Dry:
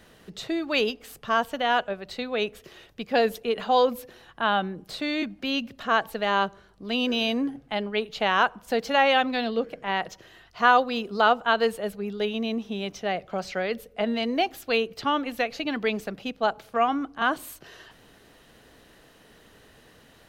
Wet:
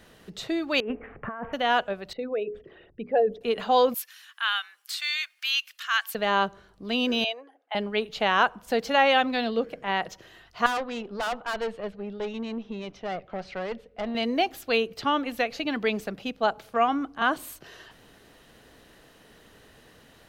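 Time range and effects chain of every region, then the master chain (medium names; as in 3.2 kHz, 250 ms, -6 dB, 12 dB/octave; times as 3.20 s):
0.80–1.53 s: steep low-pass 2.2 kHz 48 dB/octave + compressor with a negative ratio -33 dBFS
2.13–3.41 s: resonances exaggerated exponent 2 + low-pass 1.8 kHz + hum notches 60/120/180/240/300/360/420 Hz
3.94–6.15 s: high-pass 1.3 kHz 24 dB/octave + tilt EQ +3 dB/octave + band-stop 3.9 kHz, Q 20
7.24–7.75 s: resonances exaggerated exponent 1.5 + high-pass 640 Hz 24 dB/octave
10.66–14.15 s: low-pass 3.5 kHz + overload inside the chain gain 19 dB + valve stage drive 25 dB, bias 0.65
whole clip: none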